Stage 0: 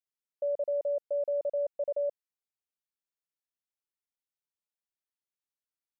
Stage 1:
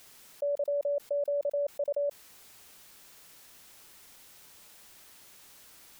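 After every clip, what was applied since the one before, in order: fast leveller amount 70%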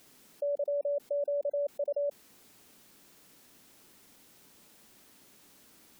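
bell 250 Hz +12 dB 1.8 oct; spectral gate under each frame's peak -30 dB strong; gain -5.5 dB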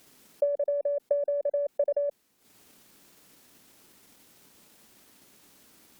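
added harmonics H 4 -45 dB, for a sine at -25 dBFS; transient shaper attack +8 dB, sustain -12 dB; gain +1.5 dB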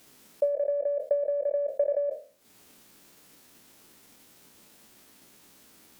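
spectral trails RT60 0.38 s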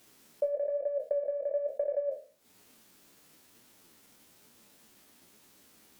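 flange 1.1 Hz, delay 7.8 ms, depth 7.6 ms, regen +49%

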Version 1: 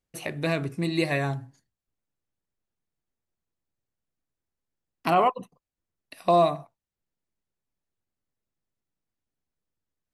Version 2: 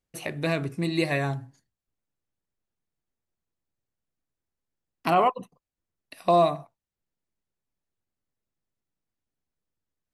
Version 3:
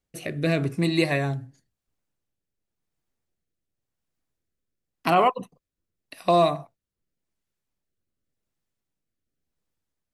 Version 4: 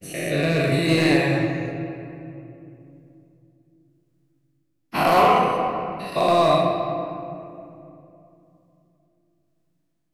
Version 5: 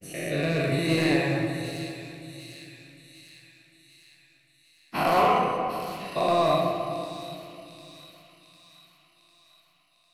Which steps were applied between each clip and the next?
nothing audible
rotary speaker horn 0.9 Hz; gain +5 dB
spectral dilation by 0.24 s; overloaded stage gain 9.5 dB; reverb RT60 2.9 s, pre-delay 7 ms, DRR 1 dB; gain -3.5 dB
thin delay 0.751 s, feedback 58%, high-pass 3900 Hz, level -5 dB; gain -5 dB

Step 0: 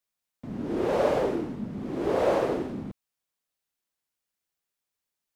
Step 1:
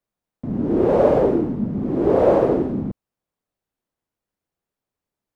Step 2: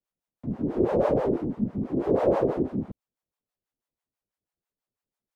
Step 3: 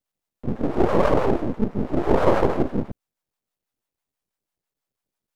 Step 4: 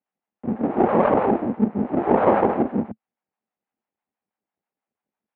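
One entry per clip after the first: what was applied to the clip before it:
tilt shelf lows +9 dB, about 1300 Hz; gain +2.5 dB
harmonic tremolo 6.1 Hz, depth 100%, crossover 600 Hz; gain -2 dB
half-wave rectifier; gain +8.5 dB
speaker cabinet 130–2500 Hz, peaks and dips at 130 Hz -7 dB, 220 Hz +7 dB, 800 Hz +7 dB

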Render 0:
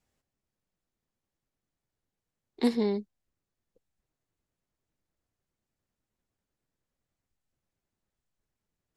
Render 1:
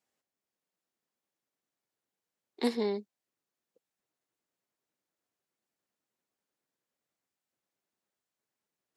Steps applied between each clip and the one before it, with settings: Bessel high-pass 330 Hz, order 2; AGC gain up to 3 dB; gain -3 dB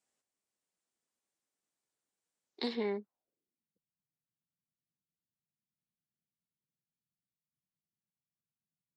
limiter -23 dBFS, peak gain reduction 6.5 dB; low-pass sweep 8700 Hz -> 160 Hz, 2.44–3.7; gain -3 dB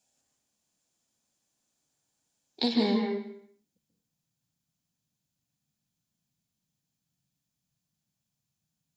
reverb RT60 0.70 s, pre-delay 0.134 s, DRR 1.5 dB; gain +7.5 dB

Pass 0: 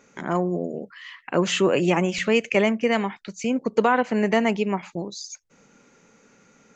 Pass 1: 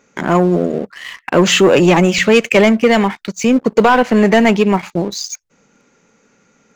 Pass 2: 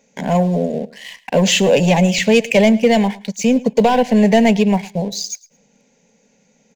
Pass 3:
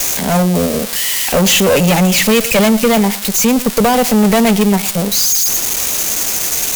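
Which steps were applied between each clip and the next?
sample leveller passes 2; gain +5 dB
fixed phaser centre 340 Hz, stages 6; feedback echo 0.109 s, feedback 23%, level -20.5 dB
switching spikes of -10.5 dBFS; tube stage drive 15 dB, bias 0.6; gain +7.5 dB

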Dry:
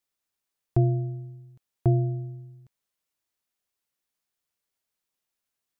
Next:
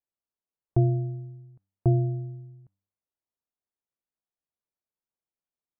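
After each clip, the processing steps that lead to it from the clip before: spectral noise reduction 6 dB; LPF 1000 Hz 12 dB/oct; de-hum 97.47 Hz, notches 3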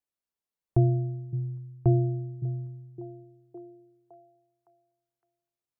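delay with a stepping band-pass 0.562 s, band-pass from 170 Hz, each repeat 0.7 oct, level -8 dB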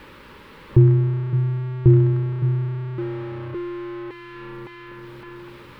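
zero-crossing step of -33.5 dBFS; Butterworth band-stop 700 Hz, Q 2.7; air absorption 470 m; gain +8.5 dB

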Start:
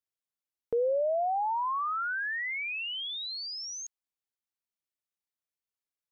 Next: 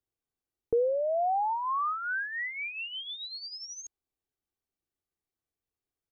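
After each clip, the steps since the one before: tilt shelf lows +8.5 dB, about 710 Hz; comb 2.6 ms, depth 43%; in parallel at -2.5 dB: negative-ratio compressor -33 dBFS, ratio -1; on the sum: gain -2.5 dB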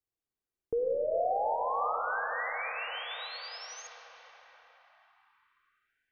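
reverb RT60 5.4 s, pre-delay 10 ms, DRR 0 dB; ending taper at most 600 dB/s; gain -5 dB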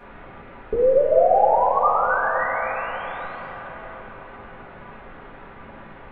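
in parallel at -5 dB: requantised 6-bit, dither triangular; on the sum: Gaussian blur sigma 4.8 samples; shoebox room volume 31 m³, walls mixed, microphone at 1.1 m; gain +3.5 dB

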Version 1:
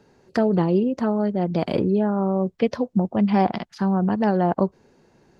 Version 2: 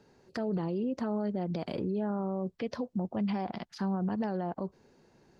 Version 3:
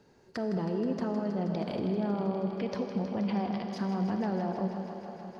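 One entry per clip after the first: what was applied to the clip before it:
bell 4600 Hz +2.5 dB; limiter -19.5 dBFS, peak gain reduction 11.5 dB; gain -5.5 dB
thinning echo 0.159 s, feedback 85%, high-pass 220 Hz, level -10.5 dB; on a send at -6 dB: reverb RT60 4.3 s, pre-delay 27 ms

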